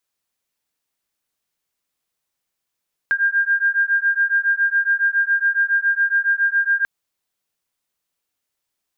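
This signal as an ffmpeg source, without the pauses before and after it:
ffmpeg -f lavfi -i "aevalsrc='0.119*(sin(2*PI*1600*t)+sin(2*PI*1607.2*t))':duration=3.74:sample_rate=44100" out.wav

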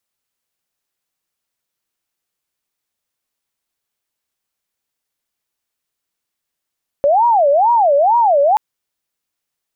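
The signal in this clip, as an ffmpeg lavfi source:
ffmpeg -f lavfi -i "aevalsrc='0.355*sin(2*PI*(757.5*t-198.5/(2*PI*2.2)*sin(2*PI*2.2*t)))':duration=1.53:sample_rate=44100" out.wav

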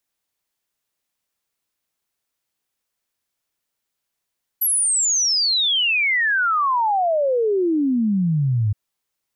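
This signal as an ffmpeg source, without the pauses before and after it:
ffmpeg -f lavfi -i "aevalsrc='0.158*clip(min(t,4.12-t)/0.01,0,1)*sin(2*PI*12000*4.12/log(100/12000)*(exp(log(100/12000)*t/4.12)-1))':duration=4.12:sample_rate=44100" out.wav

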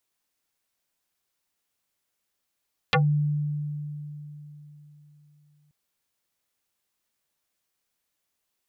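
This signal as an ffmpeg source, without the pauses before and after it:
ffmpeg -f lavfi -i "aevalsrc='0.15*pow(10,-3*t/3.72)*sin(2*PI*148*t+7.2*pow(10,-3*t/0.13)*sin(2*PI*4.34*148*t))':duration=2.78:sample_rate=44100" out.wav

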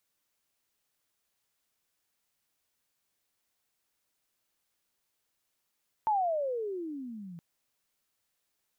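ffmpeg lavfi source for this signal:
ffmpeg -f lavfi -i "aevalsrc='pow(10,(-23.5-18.5*t/1.32)/20)*sin(2*PI*896*1.32/(-29.5*log(2)/12)*(exp(-29.5*log(2)/12*t/1.32)-1))':duration=1.32:sample_rate=44100" out.wav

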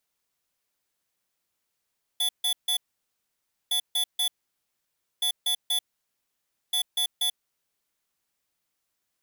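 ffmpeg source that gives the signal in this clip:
ffmpeg -f lavfi -i "aevalsrc='0.0562*(2*lt(mod(3450*t,1),0.5)-1)*clip(min(mod(mod(t,1.51),0.24),0.09-mod(mod(t,1.51),0.24))/0.005,0,1)*lt(mod(t,1.51),0.72)':duration=6.04:sample_rate=44100" out.wav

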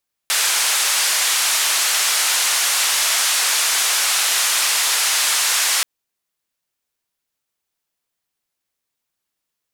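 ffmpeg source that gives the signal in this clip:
ffmpeg -f lavfi -i "anoisesrc=color=white:duration=5.53:sample_rate=44100:seed=1,highpass=frequency=950,lowpass=frequency=9800,volume=-9.3dB" out.wav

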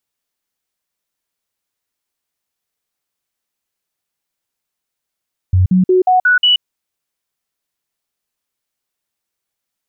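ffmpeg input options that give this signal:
ffmpeg -f lavfi -i "aevalsrc='0.422*clip(min(mod(t,0.18),0.13-mod(t,0.18))/0.005,0,1)*sin(2*PI*92.2*pow(2,floor(t/0.18)/1)*mod(t,0.18))':duration=1.08:sample_rate=44100" out.wav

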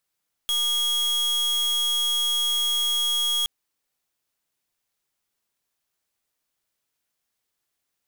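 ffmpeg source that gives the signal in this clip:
ffmpeg -f lavfi -i "aevalsrc='0.0668*(2*lt(mod(3300*t,1),0.42)-1)':duration=2.97:sample_rate=44100" out.wav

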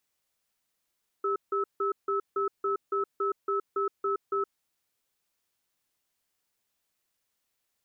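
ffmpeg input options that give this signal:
ffmpeg -f lavfi -i "aevalsrc='0.0398*(sin(2*PI*397*t)+sin(2*PI*1300*t))*clip(min(mod(t,0.28),0.12-mod(t,0.28))/0.005,0,1)':duration=3.28:sample_rate=44100" out.wav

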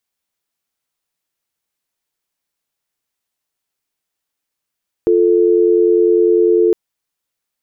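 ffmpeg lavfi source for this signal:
ffmpeg -f lavfi -i "aevalsrc='0.266*(sin(2*PI*350*t)+sin(2*PI*440*t))':duration=1.66:sample_rate=44100" out.wav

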